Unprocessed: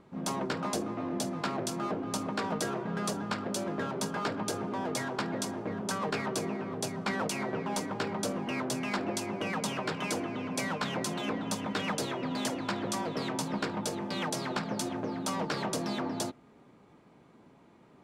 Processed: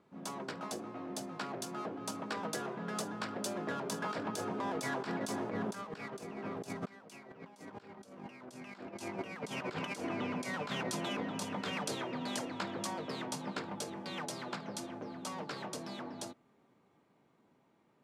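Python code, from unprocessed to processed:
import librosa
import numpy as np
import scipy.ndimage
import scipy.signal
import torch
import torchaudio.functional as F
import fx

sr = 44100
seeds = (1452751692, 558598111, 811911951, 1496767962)

y = fx.doppler_pass(x, sr, speed_mps=10, closest_m=10.0, pass_at_s=7.66)
y = scipy.signal.sosfilt(scipy.signal.butter(2, 75.0, 'highpass', fs=sr, output='sos'), y)
y = fx.low_shelf(y, sr, hz=310.0, db=-4.0)
y = fx.over_compress(y, sr, threshold_db=-45.0, ratio=-0.5)
y = F.gain(torch.from_numpy(y), 6.0).numpy()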